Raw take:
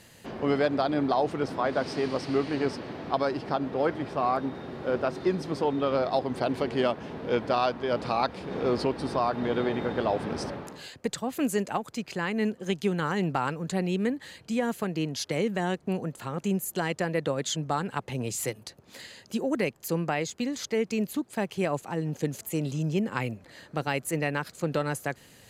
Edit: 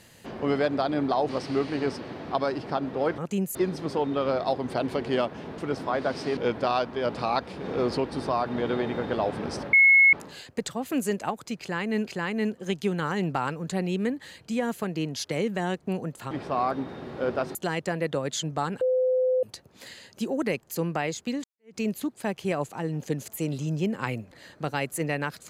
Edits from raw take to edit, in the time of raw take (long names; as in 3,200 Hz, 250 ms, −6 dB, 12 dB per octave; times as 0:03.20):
0:01.29–0:02.08: move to 0:07.24
0:03.97–0:05.21: swap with 0:16.31–0:16.68
0:10.60: insert tone 2,180 Hz −13 dBFS 0.40 s
0:12.07–0:12.54: repeat, 2 plays
0:17.94–0:18.56: beep over 511 Hz −20 dBFS
0:20.57–0:20.89: fade in exponential